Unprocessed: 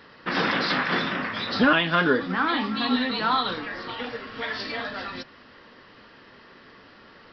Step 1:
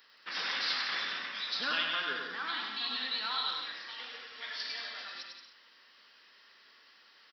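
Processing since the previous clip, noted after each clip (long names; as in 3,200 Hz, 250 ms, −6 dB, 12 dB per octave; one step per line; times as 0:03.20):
first difference
on a send: bouncing-ball delay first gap 100 ms, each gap 0.75×, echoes 5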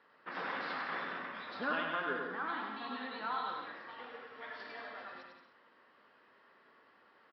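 low-pass filter 1,000 Hz 12 dB per octave
level +6 dB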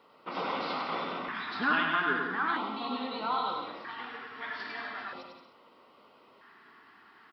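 auto-filter notch square 0.39 Hz 540–1,700 Hz
level +9 dB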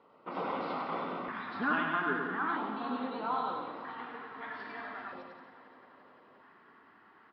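low-pass filter 2,900 Hz 6 dB per octave
high-shelf EQ 2,300 Hz −10.5 dB
echo machine with several playback heads 174 ms, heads second and third, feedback 62%, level −18 dB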